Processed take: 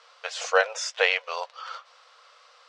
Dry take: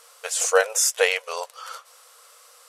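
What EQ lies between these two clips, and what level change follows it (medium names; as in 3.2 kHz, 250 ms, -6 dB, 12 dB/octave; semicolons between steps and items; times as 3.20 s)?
high-pass 530 Hz 24 dB/octave; low-pass 4.7 kHz 24 dB/octave; 0.0 dB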